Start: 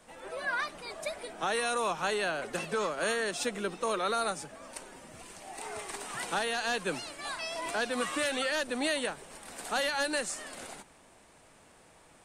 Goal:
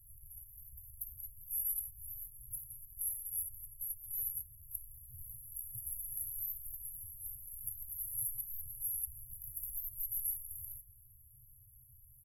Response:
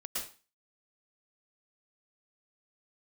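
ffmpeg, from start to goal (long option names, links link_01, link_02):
-filter_complex "[0:a]asplit=2[link_01][link_02];[link_02]adelay=128,lowpass=frequency=1900:poles=1,volume=-14dB,asplit=2[link_03][link_04];[link_04]adelay=128,lowpass=frequency=1900:poles=1,volume=0.43,asplit=2[link_05][link_06];[link_06]adelay=128,lowpass=frequency=1900:poles=1,volume=0.43,asplit=2[link_07][link_08];[link_08]adelay=128,lowpass=frequency=1900:poles=1,volume=0.43[link_09];[link_01][link_03][link_05][link_07][link_09]amix=inputs=5:normalize=0,asetrate=55563,aresample=44100,atempo=0.793701,afftfilt=real='re*(1-between(b*sr/4096,130,11000))':imag='im*(1-between(b*sr/4096,130,11000))':win_size=4096:overlap=0.75,volume=8dB"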